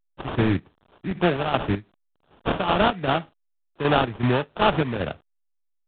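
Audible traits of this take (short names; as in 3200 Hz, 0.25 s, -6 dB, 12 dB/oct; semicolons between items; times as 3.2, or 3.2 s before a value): a quantiser's noise floor 10-bit, dither none; chopped level 2.6 Hz, depth 60%, duty 55%; aliases and images of a low sample rate 2100 Hz, jitter 20%; A-law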